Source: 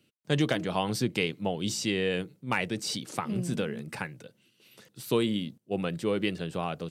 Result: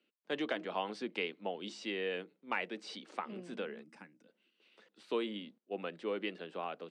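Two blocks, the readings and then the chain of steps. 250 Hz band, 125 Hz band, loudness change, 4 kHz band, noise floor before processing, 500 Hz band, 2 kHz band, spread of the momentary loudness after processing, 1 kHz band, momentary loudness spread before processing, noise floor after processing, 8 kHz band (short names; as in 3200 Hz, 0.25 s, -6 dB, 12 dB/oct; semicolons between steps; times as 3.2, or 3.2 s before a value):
-12.5 dB, -23.0 dB, -9.0 dB, -10.0 dB, -70 dBFS, -7.5 dB, -7.0 dB, 8 LU, -6.5 dB, 7 LU, -81 dBFS, -21.5 dB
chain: spectral gain 3.84–4.28, 340–4800 Hz -13 dB; elliptic band-pass 190–9200 Hz; three-band isolator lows -20 dB, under 260 Hz, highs -21 dB, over 4000 Hz; gain -6 dB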